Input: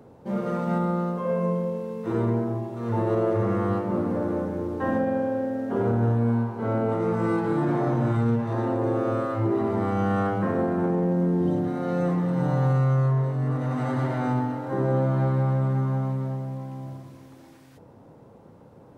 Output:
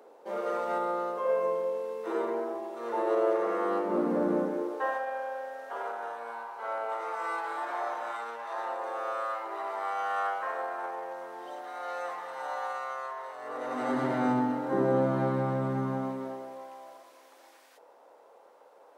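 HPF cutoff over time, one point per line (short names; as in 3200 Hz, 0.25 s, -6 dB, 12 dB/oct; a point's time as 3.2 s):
HPF 24 dB/oct
3.57 s 410 Hz
4.35 s 180 Hz
4.98 s 700 Hz
13.31 s 700 Hz
14.09 s 180 Hz
15.89 s 180 Hz
16.78 s 520 Hz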